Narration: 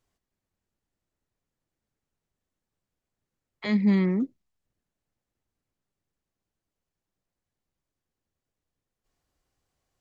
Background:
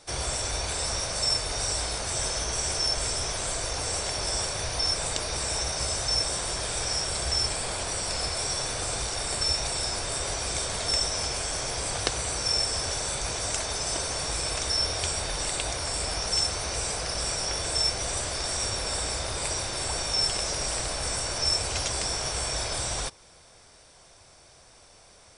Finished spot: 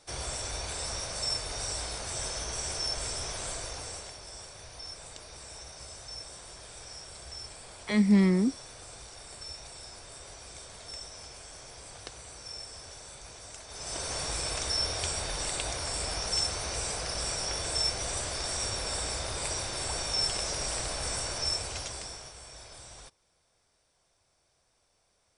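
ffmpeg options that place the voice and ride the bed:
-filter_complex "[0:a]adelay=4250,volume=0dB[a];[1:a]volume=7dB,afade=t=out:st=3.49:d=0.71:silence=0.298538,afade=t=in:st=13.67:d=0.47:silence=0.223872,afade=t=out:st=21.22:d=1.12:silence=0.188365[b];[a][b]amix=inputs=2:normalize=0"

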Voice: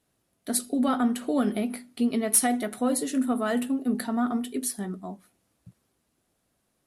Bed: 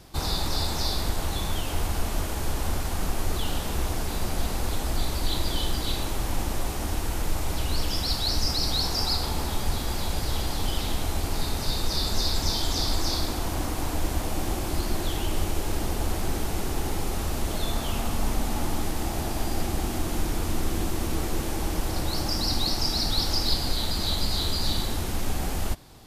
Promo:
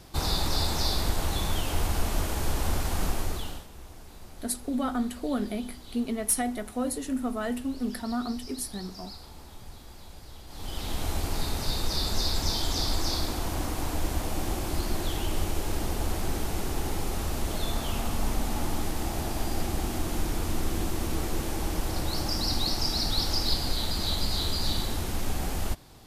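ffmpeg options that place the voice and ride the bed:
-filter_complex "[0:a]adelay=3950,volume=-4.5dB[a];[1:a]volume=16.5dB,afade=t=out:st=3.05:d=0.62:silence=0.11885,afade=t=in:st=10.47:d=0.61:silence=0.149624[b];[a][b]amix=inputs=2:normalize=0"

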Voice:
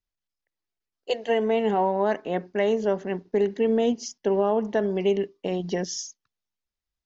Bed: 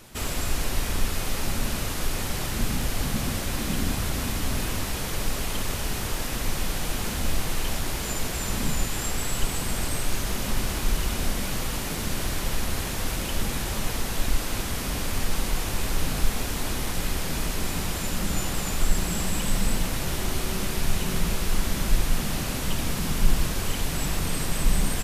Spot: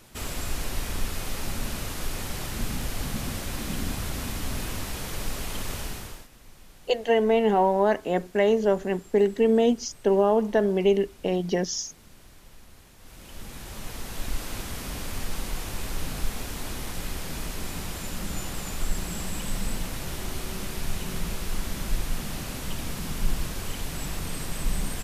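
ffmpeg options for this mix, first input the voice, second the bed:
-filter_complex "[0:a]adelay=5800,volume=2dB[a];[1:a]volume=14dB,afade=t=out:st=5.79:d=0.49:silence=0.105925,afade=t=in:st=12.99:d=1.45:silence=0.125893[b];[a][b]amix=inputs=2:normalize=0"

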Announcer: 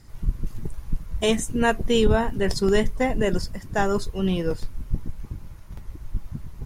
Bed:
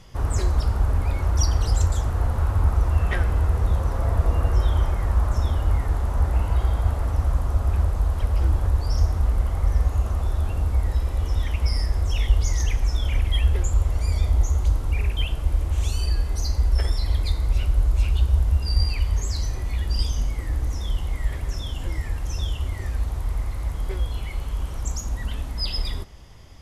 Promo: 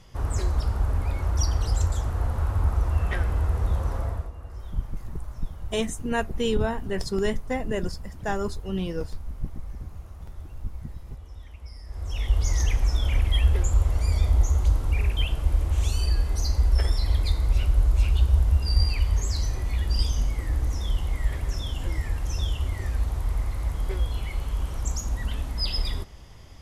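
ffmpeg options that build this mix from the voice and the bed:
-filter_complex "[0:a]adelay=4500,volume=-5.5dB[a];[1:a]volume=15dB,afade=t=out:st=3.95:d=0.36:silence=0.16788,afade=t=in:st=11.84:d=0.73:silence=0.11885[b];[a][b]amix=inputs=2:normalize=0"

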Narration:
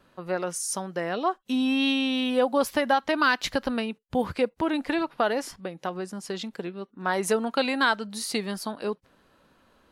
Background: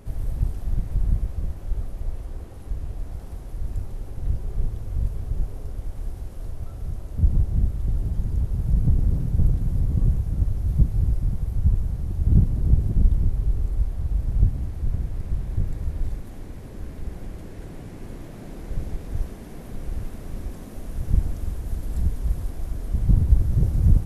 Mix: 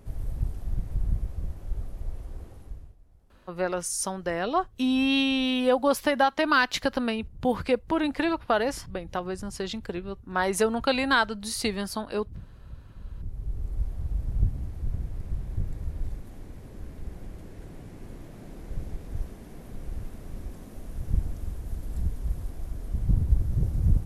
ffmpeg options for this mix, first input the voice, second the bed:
-filter_complex "[0:a]adelay=3300,volume=0.5dB[a];[1:a]volume=14.5dB,afade=t=out:st=2.47:d=0.49:silence=0.1,afade=t=in:st=13.03:d=0.84:silence=0.105925[b];[a][b]amix=inputs=2:normalize=0"

